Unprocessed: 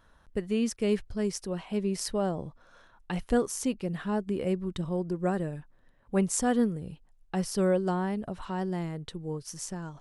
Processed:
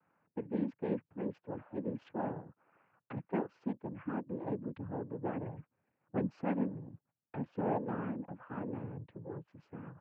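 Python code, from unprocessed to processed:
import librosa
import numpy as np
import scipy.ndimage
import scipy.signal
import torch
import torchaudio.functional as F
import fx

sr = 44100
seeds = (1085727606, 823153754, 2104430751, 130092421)

y = fx.wiener(x, sr, points=15)
y = fx.noise_vocoder(y, sr, seeds[0], bands=8)
y = scipy.signal.sosfilt(scipy.signal.butter(4, 2400.0, 'lowpass', fs=sr, output='sos'), y)
y = F.gain(torch.from_numpy(y), -8.0).numpy()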